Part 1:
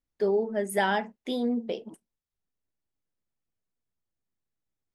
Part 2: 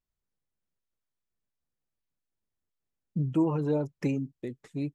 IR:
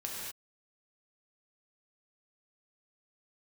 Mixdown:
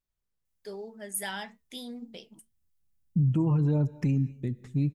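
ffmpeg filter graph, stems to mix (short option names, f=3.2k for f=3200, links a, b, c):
-filter_complex "[0:a]flanger=delay=5.3:depth=1.7:regen=-85:speed=1.8:shape=triangular,crystalizer=i=8:c=0,adelay=450,volume=-10.5dB[a];[1:a]volume=-1.5dB,asplit=2[b][c];[c]volume=-18dB[d];[2:a]atrim=start_sample=2205[e];[d][e]afir=irnorm=-1:irlink=0[f];[a][b][f]amix=inputs=3:normalize=0,asubboost=boost=8:cutoff=170,alimiter=limit=-18.5dB:level=0:latency=1:release=71"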